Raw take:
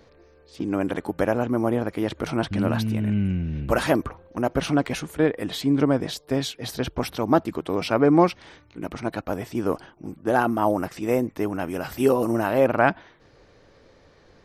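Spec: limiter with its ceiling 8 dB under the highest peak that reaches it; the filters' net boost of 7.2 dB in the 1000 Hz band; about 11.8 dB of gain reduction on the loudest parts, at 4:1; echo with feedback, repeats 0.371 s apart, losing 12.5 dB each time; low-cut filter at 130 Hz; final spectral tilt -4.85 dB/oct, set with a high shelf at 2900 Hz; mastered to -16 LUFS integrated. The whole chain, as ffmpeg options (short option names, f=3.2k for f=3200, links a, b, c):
-af "highpass=130,equalizer=f=1k:t=o:g=9,highshelf=f=2.9k:g=4.5,acompressor=threshold=-23dB:ratio=4,alimiter=limit=-16.5dB:level=0:latency=1,aecho=1:1:371|742|1113:0.237|0.0569|0.0137,volume=14dB"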